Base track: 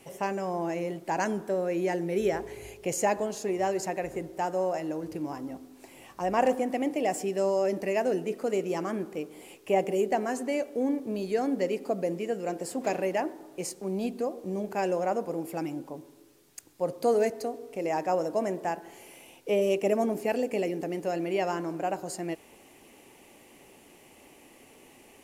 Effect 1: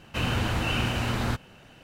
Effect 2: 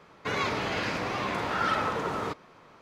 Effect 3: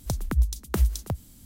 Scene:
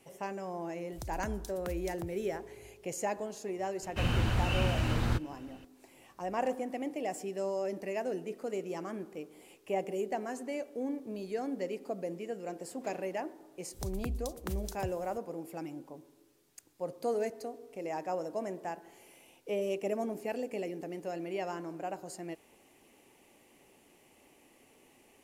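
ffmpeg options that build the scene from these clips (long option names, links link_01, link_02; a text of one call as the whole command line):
ffmpeg -i bed.wav -i cue0.wav -i cue1.wav -i cue2.wav -filter_complex "[3:a]asplit=2[link_01][link_02];[0:a]volume=-8dB[link_03];[link_01]acompressor=threshold=-27dB:ratio=6:attack=3.2:release=140:knee=1:detection=peak[link_04];[1:a]lowshelf=frequency=110:gain=10[link_05];[link_02]acompressor=threshold=-24dB:ratio=6:attack=3.2:release=140:knee=1:detection=peak[link_06];[link_04]atrim=end=1.45,asetpts=PTS-STARTPTS,volume=-10dB,afade=type=in:duration=0.004:curve=hsin,afade=type=out:start_time=1.446:duration=0.004:curve=hsin,adelay=920[link_07];[link_05]atrim=end=1.83,asetpts=PTS-STARTPTS,volume=-6.5dB,afade=type=in:duration=0.004:curve=hsin,afade=type=out:start_time=1.826:duration=0.004:curve=hsin,adelay=3820[link_08];[link_06]atrim=end=1.45,asetpts=PTS-STARTPTS,volume=-8dB,afade=type=in:duration=0.004:curve=hsin,afade=type=out:start_time=1.446:duration=0.004:curve=hsin,adelay=13730[link_09];[link_03][link_07][link_08][link_09]amix=inputs=4:normalize=0" out.wav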